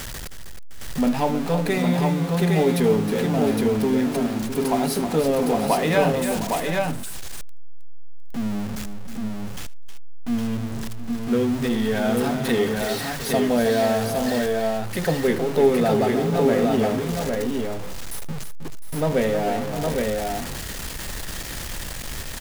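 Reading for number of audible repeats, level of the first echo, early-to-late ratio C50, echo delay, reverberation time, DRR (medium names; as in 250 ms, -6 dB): 5, -18.0 dB, no reverb, 77 ms, no reverb, no reverb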